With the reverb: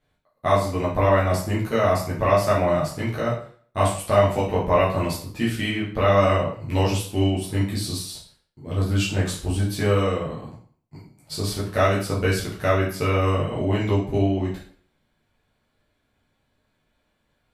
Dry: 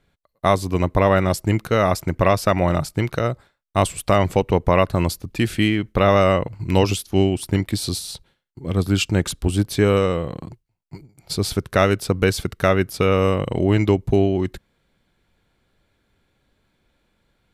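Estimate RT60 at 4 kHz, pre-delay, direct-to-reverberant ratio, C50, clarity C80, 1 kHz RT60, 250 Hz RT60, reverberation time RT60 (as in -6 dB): 0.45 s, 8 ms, -8.0 dB, 5.0 dB, 10.0 dB, 0.50 s, 0.50 s, 0.50 s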